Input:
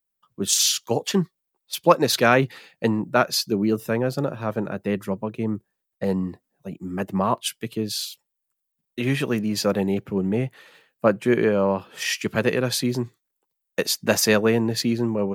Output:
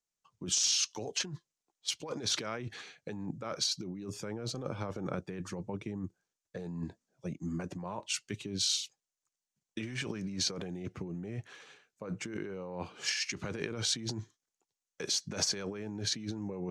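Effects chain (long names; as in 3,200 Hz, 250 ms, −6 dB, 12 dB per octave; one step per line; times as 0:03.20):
de-essing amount 45%
brickwall limiter −13.5 dBFS, peak gain reduction 11.5 dB
compressor whose output falls as the input rises −29 dBFS, ratio −1
low-pass with resonance 7,000 Hz, resonance Q 2.8
wrong playback speed 48 kHz file played as 44.1 kHz
level −9 dB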